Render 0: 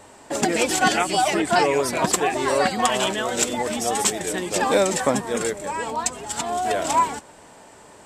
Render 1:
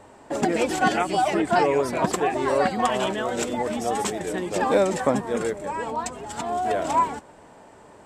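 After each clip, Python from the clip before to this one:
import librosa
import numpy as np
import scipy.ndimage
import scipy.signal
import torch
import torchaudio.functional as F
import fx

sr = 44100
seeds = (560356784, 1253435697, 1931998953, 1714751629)

y = fx.high_shelf(x, sr, hz=2400.0, db=-11.5)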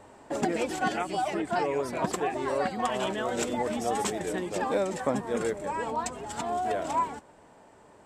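y = fx.rider(x, sr, range_db=3, speed_s=0.5)
y = F.gain(torch.from_numpy(y), -5.5).numpy()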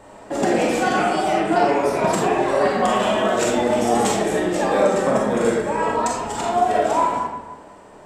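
y = fx.rev_freeverb(x, sr, rt60_s=1.2, hf_ratio=0.6, predelay_ms=0, drr_db=-4.0)
y = F.gain(torch.from_numpy(y), 5.0).numpy()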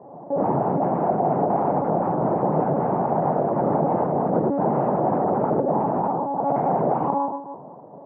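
y = (np.mod(10.0 ** (14.5 / 20.0) * x + 1.0, 2.0) - 1.0) / 10.0 ** (14.5 / 20.0)
y = fx.lpc_monotone(y, sr, seeds[0], pitch_hz=280.0, order=10)
y = scipy.signal.sosfilt(scipy.signal.ellip(3, 1.0, 60, [150.0, 870.0], 'bandpass', fs=sr, output='sos'), y)
y = F.gain(torch.from_numpy(y), 4.5).numpy()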